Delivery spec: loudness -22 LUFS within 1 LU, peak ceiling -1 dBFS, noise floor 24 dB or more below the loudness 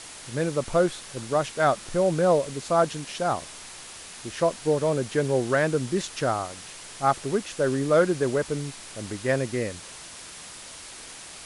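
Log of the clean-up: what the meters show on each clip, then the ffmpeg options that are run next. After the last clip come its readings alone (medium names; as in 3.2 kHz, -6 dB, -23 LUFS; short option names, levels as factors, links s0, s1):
noise floor -43 dBFS; noise floor target -50 dBFS; loudness -25.5 LUFS; peak level -8.5 dBFS; loudness target -22.0 LUFS
-> -af "afftdn=nr=7:nf=-43"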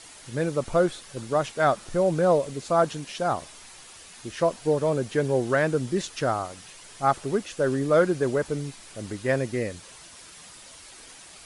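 noise floor -47 dBFS; noise floor target -50 dBFS
-> -af "afftdn=nr=6:nf=-47"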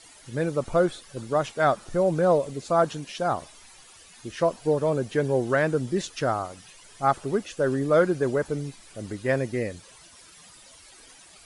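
noise floor -51 dBFS; loudness -25.5 LUFS; peak level -8.5 dBFS; loudness target -22.0 LUFS
-> -af "volume=1.5"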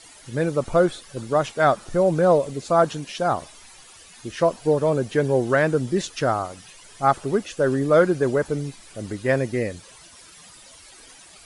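loudness -22.0 LUFS; peak level -5.0 dBFS; noise floor -48 dBFS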